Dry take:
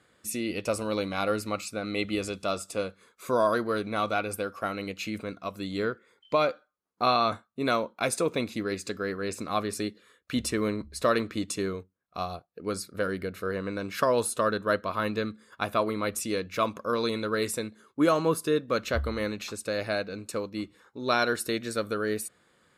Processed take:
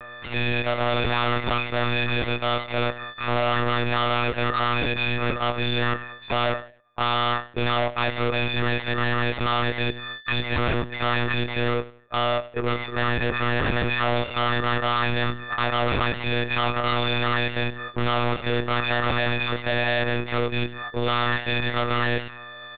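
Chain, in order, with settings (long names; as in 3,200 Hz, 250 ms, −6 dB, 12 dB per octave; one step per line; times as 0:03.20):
every partial snapped to a pitch grid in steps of 6 semitones
mid-hump overdrive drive 26 dB, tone 1,500 Hz, clips at −6.5 dBFS
gain into a clipping stage and back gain 24.5 dB
repeating echo 87 ms, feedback 32%, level −17 dB
one-pitch LPC vocoder at 8 kHz 120 Hz
level +3 dB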